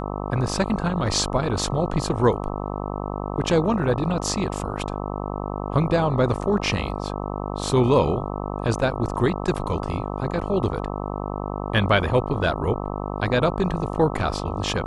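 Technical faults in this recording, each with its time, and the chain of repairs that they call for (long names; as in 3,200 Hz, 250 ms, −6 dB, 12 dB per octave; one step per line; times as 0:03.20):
mains buzz 50 Hz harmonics 26 −29 dBFS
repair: hum removal 50 Hz, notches 26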